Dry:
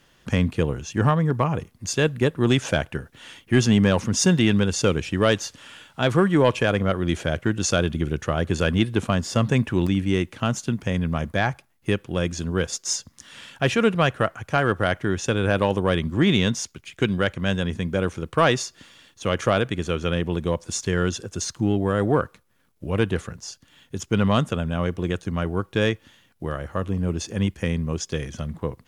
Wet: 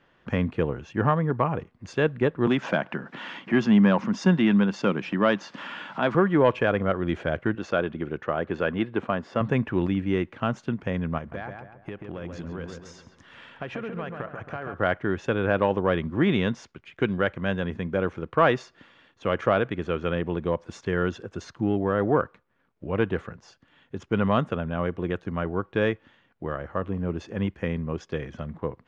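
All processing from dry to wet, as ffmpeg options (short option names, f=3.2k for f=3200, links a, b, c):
-filter_complex "[0:a]asettb=1/sr,asplit=3[a][b][c];[a]atrim=end=2.474[d];[b]atrim=start=2.47:end=6.15,asetpts=PTS-STARTPTS,afade=t=in:d=0.004:c=qsin,afade=t=out:st=3.676:d=0.004:c=qsin,highpass=f=150:w=0.5412,highpass=f=150:w=1.3066,equalizer=f=200:t=q:w=4:g=6,equalizer=f=450:t=q:w=4:g=-6,equalizer=f=1k:t=q:w=4:g=4,equalizer=f=5k:t=q:w=4:g=3,lowpass=f=8.1k:w=0.5412,lowpass=f=8.1k:w=1.3066,acompressor=mode=upward:threshold=-21dB:ratio=2.5:attack=3.2:release=140:knee=2.83:detection=peak[e];[c]atrim=start=6.146[f];[d][e]acrossfade=d=0.004:c1=hsin:c2=qsin[g];[g][f]acrossfade=d=0.004:c1=qsin:c2=hsin,asettb=1/sr,asplit=3[h][i][j];[h]atrim=end=7.554[k];[i]atrim=start=7.55:end=9.41,asetpts=PTS-STARTPTS,afade=t=in:d=0.004:c=qsin,afade=t=out:st=1.856:d=0.004:c=qsin,highpass=f=250:p=1,aemphasis=mode=reproduction:type=50fm[l];[j]atrim=start=9.406[m];[k][l]acrossfade=d=0.004:c1=hsin:c2=qsin[n];[n][m]acrossfade=d=0.004:c1=qsin:c2=hsin,asettb=1/sr,asplit=3[o][p][q];[o]atrim=end=11.184[r];[p]atrim=start=11.18:end=14.74,asetpts=PTS-STARTPTS,afade=t=in:d=0.004:c=qsin,afade=t=out:st=3.556:d=0.004:c=qsin,acompressor=threshold=-27dB:ratio=16:attack=3.2:release=140:knee=1:detection=peak,asplit=2[s][t];[t]adelay=136,lowpass=f=2k:p=1,volume=-4.5dB,asplit=2[u][v];[v]adelay=136,lowpass=f=2k:p=1,volume=0.45,asplit=2[w][x];[x]adelay=136,lowpass=f=2k:p=1,volume=0.45,asplit=2[y][z];[z]adelay=136,lowpass=f=2k:p=1,volume=0.45,asplit=2[aa][ab];[ab]adelay=136,lowpass=f=2k:p=1,volume=0.45,asplit=2[ac][ad];[ad]adelay=136,lowpass=f=2k:p=1,volume=0.45[ae];[s][u][w][y][aa][ac][ae]amix=inputs=7:normalize=0,atrim=end_sample=156996[af];[q]atrim=start=14.736[ag];[r][af]acrossfade=d=0.004:c1=hsin:c2=qsin[ah];[ah][ag]acrossfade=d=0.004:c1=qsin:c2=hsin,lowpass=2k,lowshelf=f=160:g=-9"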